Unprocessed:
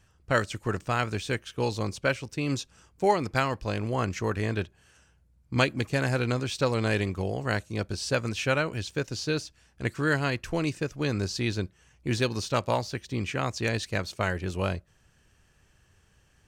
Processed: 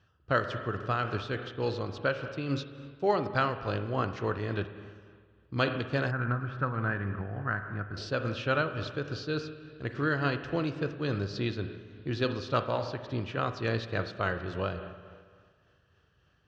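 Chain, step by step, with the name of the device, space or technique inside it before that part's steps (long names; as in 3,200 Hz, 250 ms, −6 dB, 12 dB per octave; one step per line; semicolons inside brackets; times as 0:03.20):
combo amplifier with spring reverb and tremolo (spring reverb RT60 1.8 s, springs 35/39/50 ms, chirp 60 ms, DRR 7.5 dB; amplitude tremolo 3.5 Hz, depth 33%; loudspeaker in its box 78–4,300 Hz, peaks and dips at 210 Hz −5 dB, 870 Hz −5 dB, 1,300 Hz +4 dB, 2,200 Hz −10 dB)
0:06.11–0:07.97: drawn EQ curve 220 Hz 0 dB, 480 Hz −11 dB, 690 Hz −4 dB, 1,600 Hz +4 dB, 3,800 Hz −23 dB
level −1 dB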